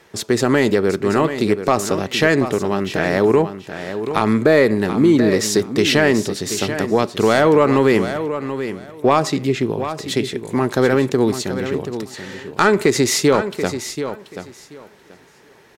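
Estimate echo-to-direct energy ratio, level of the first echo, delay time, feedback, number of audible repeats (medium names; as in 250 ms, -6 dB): -10.0 dB, -10.0 dB, 733 ms, 18%, 2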